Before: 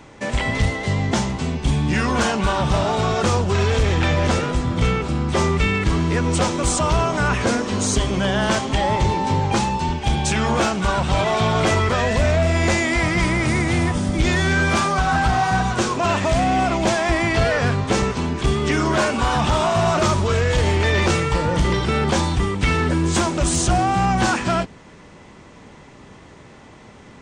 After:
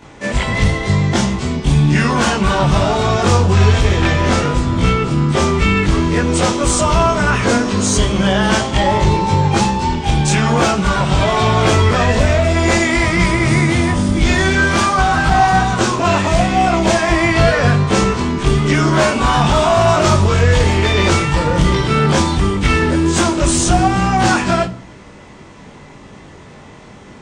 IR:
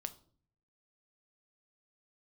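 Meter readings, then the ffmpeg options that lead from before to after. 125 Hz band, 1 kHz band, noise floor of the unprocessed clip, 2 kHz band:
+6.0 dB, +5.0 dB, -44 dBFS, +5.0 dB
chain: -filter_complex "[0:a]asplit=2[s0][s1];[1:a]atrim=start_sample=2205,adelay=21[s2];[s1][s2]afir=irnorm=-1:irlink=0,volume=2.37[s3];[s0][s3]amix=inputs=2:normalize=0,volume=0.891"

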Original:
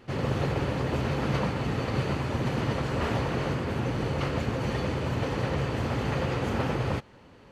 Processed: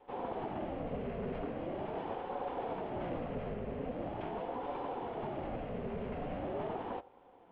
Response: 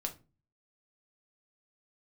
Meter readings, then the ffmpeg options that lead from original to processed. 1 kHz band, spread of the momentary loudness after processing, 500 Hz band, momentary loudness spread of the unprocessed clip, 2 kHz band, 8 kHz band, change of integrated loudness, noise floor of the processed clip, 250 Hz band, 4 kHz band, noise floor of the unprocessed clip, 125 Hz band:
-6.0 dB, 2 LU, -7.0 dB, 2 LU, -16.5 dB, under -35 dB, -10.5 dB, -60 dBFS, -11.0 dB, -19.0 dB, -52 dBFS, -18.5 dB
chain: -filter_complex "[0:a]highpass=f=160:t=q:w=0.5412,highpass=f=160:t=q:w=1.307,lowpass=f=2800:t=q:w=0.5176,lowpass=f=2800:t=q:w=0.7071,lowpass=f=2800:t=q:w=1.932,afreqshift=-150,highpass=62,equalizer=f=1200:w=0.42:g=-15,asoftclip=type=tanh:threshold=0.0316,asplit=2[s0][s1];[1:a]atrim=start_sample=2205,lowpass=2700[s2];[s1][s2]afir=irnorm=-1:irlink=0,volume=0.251[s3];[s0][s3]amix=inputs=2:normalize=0,aeval=exprs='val(0)*sin(2*PI*480*n/s+480*0.35/0.42*sin(2*PI*0.42*n/s))':c=same"

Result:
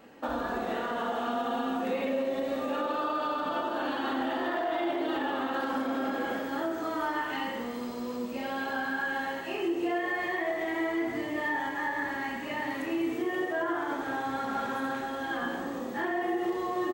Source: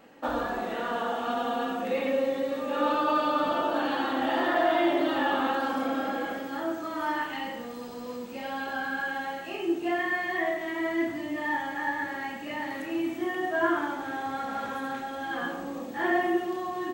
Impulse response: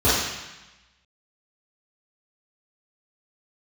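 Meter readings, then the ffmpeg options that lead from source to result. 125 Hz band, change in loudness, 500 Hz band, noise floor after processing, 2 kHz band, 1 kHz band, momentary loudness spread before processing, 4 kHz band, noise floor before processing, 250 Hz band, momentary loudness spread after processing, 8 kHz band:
0.0 dB, -2.0 dB, -2.5 dB, -36 dBFS, -2.0 dB, -3.0 dB, 9 LU, -2.5 dB, -39 dBFS, -1.5 dB, 4 LU, -1.0 dB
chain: -filter_complex "[0:a]asplit=2[s0][s1];[1:a]atrim=start_sample=2205[s2];[s1][s2]afir=irnorm=-1:irlink=0,volume=0.0355[s3];[s0][s3]amix=inputs=2:normalize=0,alimiter=limit=0.075:level=0:latency=1:release=107,asplit=2[s4][s5];[s5]asplit=4[s6][s7][s8][s9];[s6]adelay=200,afreqshift=120,volume=0.188[s10];[s7]adelay=400,afreqshift=240,volume=0.0851[s11];[s8]adelay=600,afreqshift=360,volume=0.038[s12];[s9]adelay=800,afreqshift=480,volume=0.0172[s13];[s10][s11][s12][s13]amix=inputs=4:normalize=0[s14];[s4][s14]amix=inputs=2:normalize=0"

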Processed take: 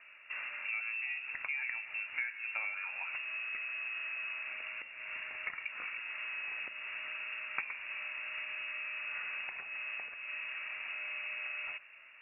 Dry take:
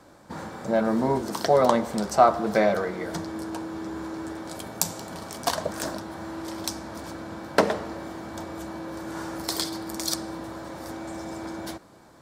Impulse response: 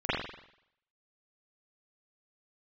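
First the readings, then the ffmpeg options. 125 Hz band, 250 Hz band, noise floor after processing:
under -35 dB, under -40 dB, -56 dBFS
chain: -af "acompressor=threshold=0.0224:ratio=5,lowpass=f=2500:t=q:w=0.5098,lowpass=f=2500:t=q:w=0.6013,lowpass=f=2500:t=q:w=0.9,lowpass=f=2500:t=q:w=2.563,afreqshift=-2900,volume=0.668"

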